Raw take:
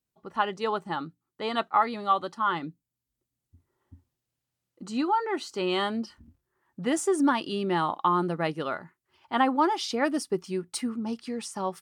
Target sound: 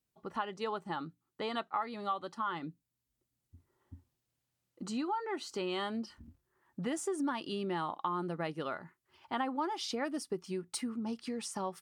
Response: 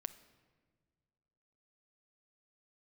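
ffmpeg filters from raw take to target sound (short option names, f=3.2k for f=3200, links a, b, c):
-af "acompressor=threshold=-37dB:ratio=2.5"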